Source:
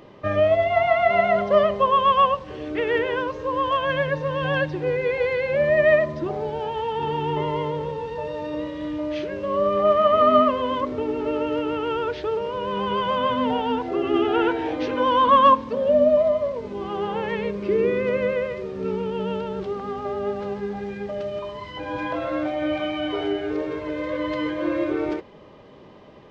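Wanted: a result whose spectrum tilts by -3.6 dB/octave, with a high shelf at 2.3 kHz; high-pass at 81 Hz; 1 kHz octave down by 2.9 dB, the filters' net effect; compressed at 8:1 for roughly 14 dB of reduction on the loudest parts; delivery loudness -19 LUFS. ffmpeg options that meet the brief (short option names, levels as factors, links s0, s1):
-af "highpass=81,equalizer=f=1000:t=o:g=-4.5,highshelf=f=2300:g=5.5,acompressor=threshold=0.0355:ratio=8,volume=4.73"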